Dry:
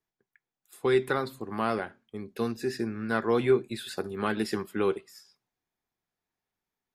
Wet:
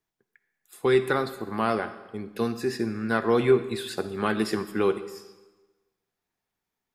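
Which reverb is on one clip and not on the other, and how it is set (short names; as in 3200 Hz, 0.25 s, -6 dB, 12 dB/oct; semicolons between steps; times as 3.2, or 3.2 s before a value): digital reverb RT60 1.2 s, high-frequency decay 0.95×, pre-delay 10 ms, DRR 12 dB; gain +3 dB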